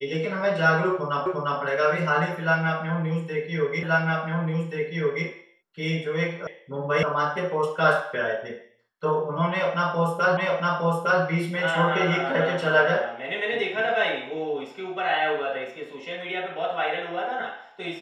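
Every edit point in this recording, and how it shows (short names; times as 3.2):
1.26 repeat of the last 0.35 s
3.83 repeat of the last 1.43 s
6.47 sound cut off
7.03 sound cut off
10.37 repeat of the last 0.86 s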